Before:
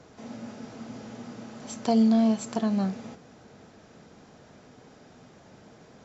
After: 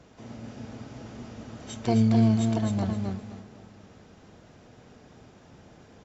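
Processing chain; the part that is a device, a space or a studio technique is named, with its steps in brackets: echo from a far wall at 130 m, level -25 dB; feedback delay 260 ms, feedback 23%, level -4 dB; octave pedal (harmony voices -12 st -2 dB); trim -3.5 dB

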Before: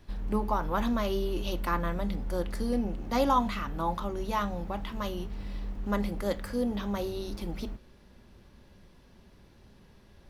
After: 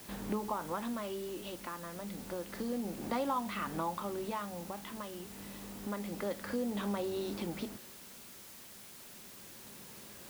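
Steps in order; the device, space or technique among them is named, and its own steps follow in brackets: medium wave at night (band-pass 170–3800 Hz; compression 4:1, threshold -39 dBFS, peak gain reduction 15.5 dB; tremolo 0.29 Hz, depth 60%; whistle 10 kHz -73 dBFS; white noise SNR 13 dB); trim +5.5 dB

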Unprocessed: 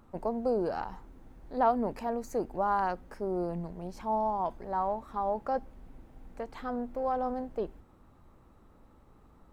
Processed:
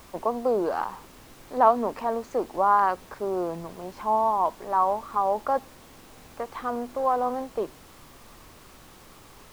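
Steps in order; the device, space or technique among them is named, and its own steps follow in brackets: horn gramophone (band-pass 280–4100 Hz; peaking EQ 1.1 kHz +9 dB 0.31 oct; wow and flutter; pink noise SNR 23 dB); trim +5.5 dB

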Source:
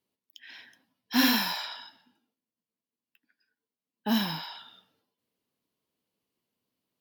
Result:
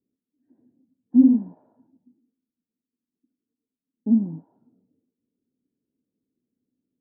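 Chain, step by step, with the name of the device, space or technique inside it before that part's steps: under water (low-pass 430 Hz 24 dB/octave; peaking EQ 260 Hz +9.5 dB 0.55 oct); trim +2.5 dB

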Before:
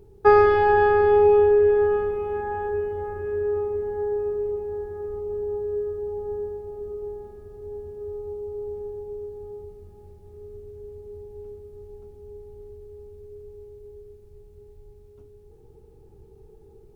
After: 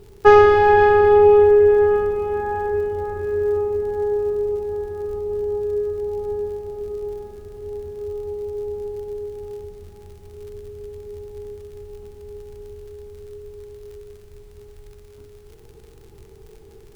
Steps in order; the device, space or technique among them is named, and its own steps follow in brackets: record under a worn stylus (tracing distortion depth 0.057 ms; crackle; pink noise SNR 40 dB); trim +4.5 dB

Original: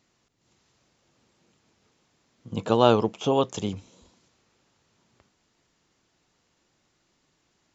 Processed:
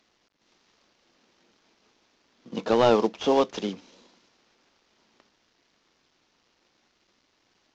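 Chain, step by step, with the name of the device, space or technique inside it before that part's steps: early wireless headset (high-pass 210 Hz 24 dB/octave; CVSD coder 32 kbps); trim +2 dB

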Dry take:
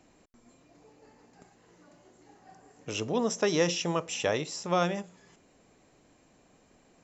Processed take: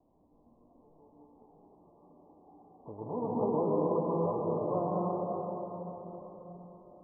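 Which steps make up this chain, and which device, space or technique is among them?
shimmer-style reverb (harmony voices +12 st -8 dB; reverberation RT60 4.4 s, pre-delay 112 ms, DRR -5.5 dB); steep low-pass 1.1 kHz 96 dB/octave; trim -8 dB

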